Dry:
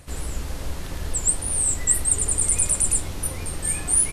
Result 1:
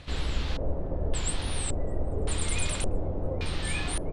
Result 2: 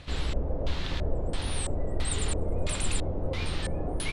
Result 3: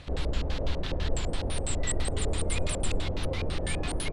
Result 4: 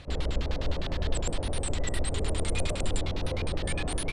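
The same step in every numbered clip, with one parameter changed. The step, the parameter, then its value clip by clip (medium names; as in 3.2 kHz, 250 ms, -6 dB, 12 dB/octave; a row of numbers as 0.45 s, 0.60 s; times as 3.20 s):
LFO low-pass, rate: 0.88 Hz, 1.5 Hz, 6 Hz, 9.8 Hz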